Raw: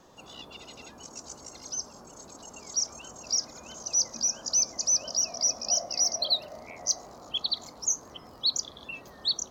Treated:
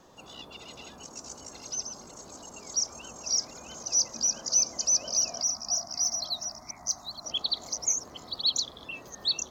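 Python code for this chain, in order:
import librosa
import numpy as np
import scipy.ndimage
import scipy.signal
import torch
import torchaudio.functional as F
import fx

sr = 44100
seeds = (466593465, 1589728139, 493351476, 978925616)

y = fx.reverse_delay(x, sr, ms=610, wet_db=-7)
y = fx.fixed_phaser(y, sr, hz=1200.0, stages=4, at=(5.42, 7.25))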